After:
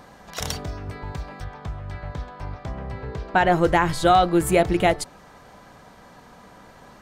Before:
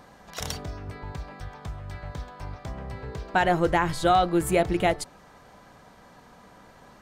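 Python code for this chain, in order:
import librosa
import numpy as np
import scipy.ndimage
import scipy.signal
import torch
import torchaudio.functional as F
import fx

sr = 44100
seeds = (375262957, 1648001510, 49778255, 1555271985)

y = fx.high_shelf(x, sr, hz=5800.0, db=-11.0, at=(1.44, 3.52))
y = y * librosa.db_to_amplitude(4.0)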